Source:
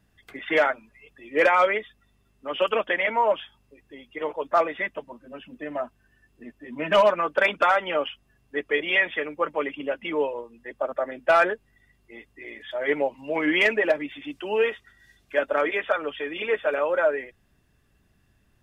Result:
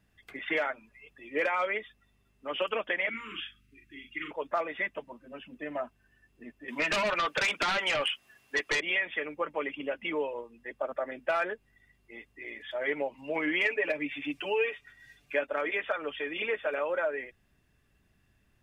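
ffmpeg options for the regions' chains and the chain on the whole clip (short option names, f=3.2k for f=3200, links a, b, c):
-filter_complex "[0:a]asettb=1/sr,asplit=3[a][b][c];[a]atrim=end=3.094[d];[b]atrim=start=3.09:end=4.31,asetpts=PTS-STARTPTS,afade=t=in:d=0.004:c=qsin,afade=t=out:st=1.216:d=0.004:c=qsin,asuperstop=centerf=670:order=12:qfactor=0.78,equalizer=f=2.6k:w=2.3:g=4.5,asplit=2[e][f];[f]adelay=40,volume=-5dB[g];[e][g]amix=inputs=2:normalize=0,atrim=end_sample=53802[h];[c]atrim=start=4.306[i];[d][h]acrossfade=d=0.004:c1=hsin:c2=qsin[j];[j][i]acrossfade=d=0.004:c1=qsin:c2=hsin,asettb=1/sr,asplit=3[k][l][m];[k]atrim=end=6.684[n];[l]atrim=start=6.68:end=8.81,asetpts=PTS-STARTPTS,afade=t=in:d=0.004:c=qsin,afade=t=out:st=2.126:d=0.004:c=qsin,highpass=f=1.1k:p=1,acompressor=threshold=-24dB:ratio=5:attack=3.2:release=140:knee=1:detection=peak,aeval=exprs='0.15*sin(PI/2*3.16*val(0)/0.15)':c=same[o];[m]atrim=start=8.806[p];[n][o]acrossfade=d=0.004:c1=hsin:c2=qsin[q];[q][p]acrossfade=d=0.004:c1=qsin:c2=hsin,asettb=1/sr,asplit=3[r][s][t];[r]atrim=end=13.644[u];[s]atrim=start=13.64:end=15.47,asetpts=PTS-STARTPTS,afade=t=in:d=0.004:c=qsin,afade=t=out:st=1.826:d=0.004:c=qsin,equalizer=f=2.4k:w=6.1:g=7,aecho=1:1:6.9:0.9,atrim=end_sample=80703[v];[t]atrim=start=15.466[w];[u][v]acrossfade=d=0.004:c1=hsin:c2=qsin[x];[x][w]acrossfade=d=0.004:c1=qsin:c2=hsin,equalizer=f=2.3k:t=o:w=0.78:g=4,acompressor=threshold=-23dB:ratio=3,volume=-4.5dB"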